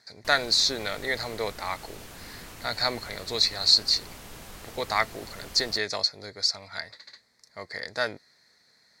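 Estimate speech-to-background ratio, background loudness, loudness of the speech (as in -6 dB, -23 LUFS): 18.0 dB, -44.0 LUFS, -26.0 LUFS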